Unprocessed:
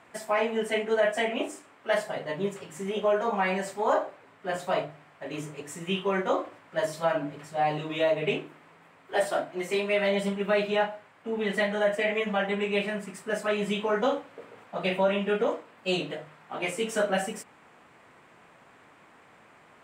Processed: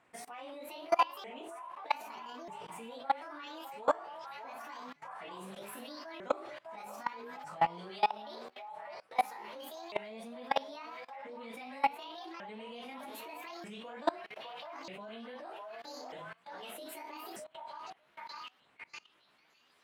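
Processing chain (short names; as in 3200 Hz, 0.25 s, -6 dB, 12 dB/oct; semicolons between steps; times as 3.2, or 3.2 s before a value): repeated pitch sweeps +9.5 st, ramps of 1.24 s; delay with a stepping band-pass 0.604 s, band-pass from 860 Hz, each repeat 0.7 oct, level -5.5 dB; level quantiser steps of 23 dB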